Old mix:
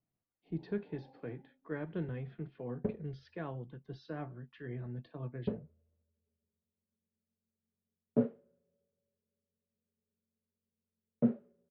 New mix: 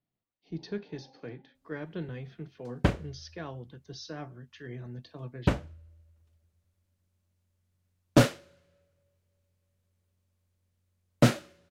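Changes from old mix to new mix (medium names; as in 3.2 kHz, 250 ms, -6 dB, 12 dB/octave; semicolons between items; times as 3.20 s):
background: remove two resonant band-passes 310 Hz, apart 0.88 oct; master: remove distance through air 440 m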